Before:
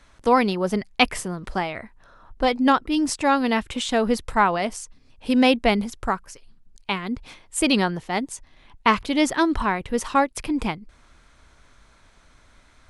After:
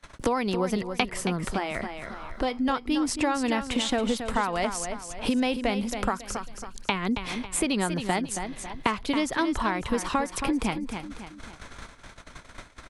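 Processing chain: compressor 6:1, threshold -32 dBFS, peak gain reduction 18.5 dB; gate -51 dBFS, range -31 dB; 1.44–2.69 resonator 85 Hz, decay 0.27 s, harmonics all, mix 40%; feedback echo 0.274 s, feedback 31%, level -9.5 dB; three-band squash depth 40%; gain +8 dB

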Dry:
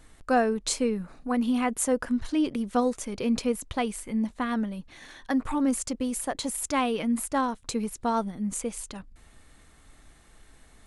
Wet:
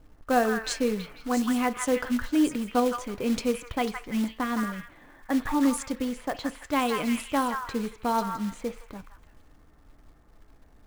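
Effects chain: delay with a stepping band-pass 0.165 s, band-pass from 1500 Hz, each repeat 0.7 oct, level -1 dB; low-pass opened by the level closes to 820 Hz, open at -20.5 dBFS; short-mantissa float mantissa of 2-bit; FDN reverb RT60 0.35 s, low-frequency decay 0.7×, high-frequency decay 0.4×, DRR 12.5 dB

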